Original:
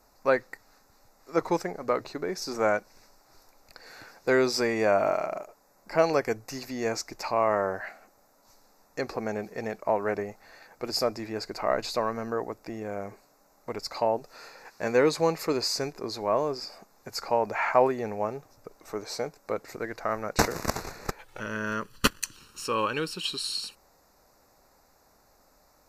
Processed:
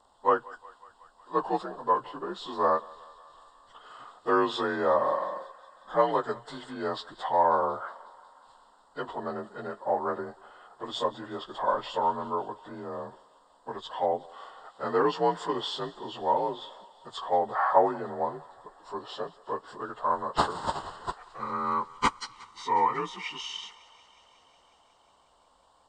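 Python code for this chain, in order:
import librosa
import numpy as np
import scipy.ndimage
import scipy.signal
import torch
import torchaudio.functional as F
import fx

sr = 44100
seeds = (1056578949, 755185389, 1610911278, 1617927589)

y = fx.partial_stretch(x, sr, pct=88)
y = fx.peak_eq(y, sr, hz=1000.0, db=13.5, octaves=0.91)
y = fx.echo_thinned(y, sr, ms=182, feedback_pct=79, hz=560.0, wet_db=-21)
y = y * librosa.db_to_amplitude(-4.5)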